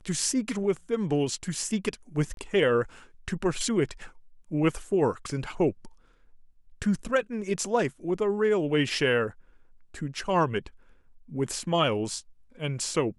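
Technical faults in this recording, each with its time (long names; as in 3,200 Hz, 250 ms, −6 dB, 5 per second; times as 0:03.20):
0:02.34–0:02.37: drop-out 32 ms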